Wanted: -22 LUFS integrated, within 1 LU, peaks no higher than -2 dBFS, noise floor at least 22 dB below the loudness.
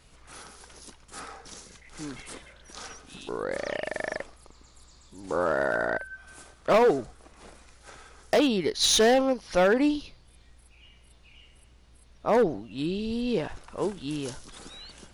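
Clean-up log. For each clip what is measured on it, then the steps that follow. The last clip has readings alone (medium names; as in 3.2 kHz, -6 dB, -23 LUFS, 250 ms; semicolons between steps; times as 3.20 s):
clipped samples 0.7%; clipping level -16.0 dBFS; loudness -26.0 LUFS; peak level -16.0 dBFS; loudness target -22.0 LUFS
-> clip repair -16 dBFS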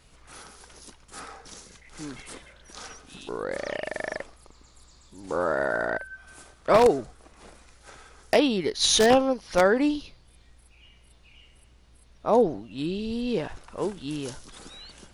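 clipped samples 0.0%; loudness -25.0 LUFS; peak level -7.0 dBFS; loudness target -22.0 LUFS
-> trim +3 dB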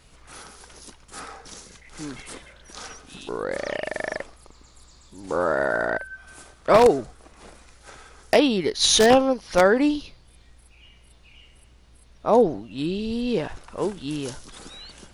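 loudness -22.0 LUFS; peak level -4.0 dBFS; noise floor -53 dBFS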